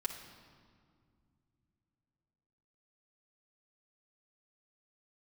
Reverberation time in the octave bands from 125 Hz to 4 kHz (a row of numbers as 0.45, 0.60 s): 4.1, 3.6, 2.2, 2.0, 1.6, 1.4 s